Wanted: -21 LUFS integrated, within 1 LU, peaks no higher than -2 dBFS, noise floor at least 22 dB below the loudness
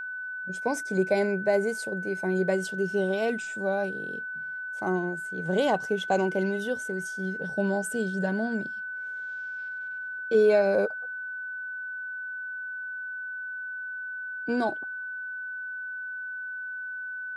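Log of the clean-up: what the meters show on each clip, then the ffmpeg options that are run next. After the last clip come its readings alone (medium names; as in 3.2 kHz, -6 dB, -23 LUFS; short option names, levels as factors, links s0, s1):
steady tone 1.5 kHz; tone level -33 dBFS; loudness -29.5 LUFS; peak level -11.5 dBFS; loudness target -21.0 LUFS
-> -af "bandreject=f=1500:w=30"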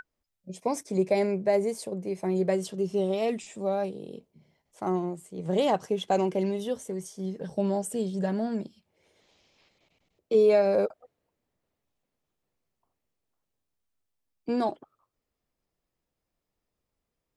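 steady tone not found; loudness -28.0 LUFS; peak level -12.0 dBFS; loudness target -21.0 LUFS
-> -af "volume=2.24"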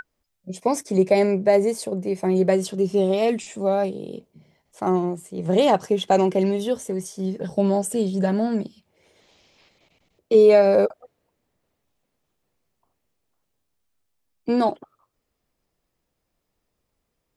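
loudness -21.0 LUFS; peak level -5.0 dBFS; noise floor -77 dBFS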